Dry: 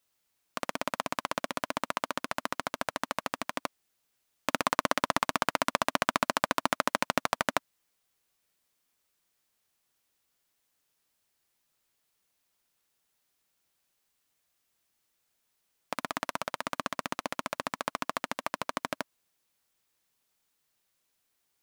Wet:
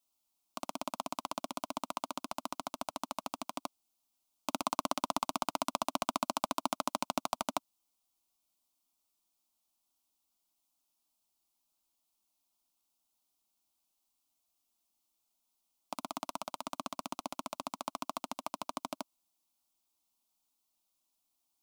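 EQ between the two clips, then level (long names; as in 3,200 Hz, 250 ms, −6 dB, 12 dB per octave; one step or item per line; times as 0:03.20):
phaser with its sweep stopped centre 470 Hz, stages 6
−3.0 dB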